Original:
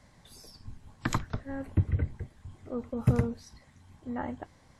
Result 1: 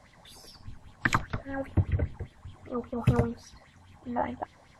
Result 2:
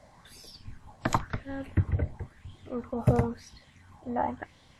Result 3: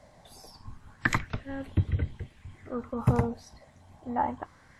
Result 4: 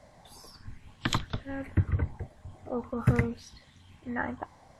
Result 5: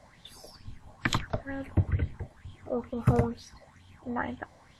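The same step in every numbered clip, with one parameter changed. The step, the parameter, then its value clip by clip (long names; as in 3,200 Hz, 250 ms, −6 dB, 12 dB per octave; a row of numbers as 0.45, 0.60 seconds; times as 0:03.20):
auto-filter bell, speed: 5, 0.97, 0.27, 0.41, 2.2 Hertz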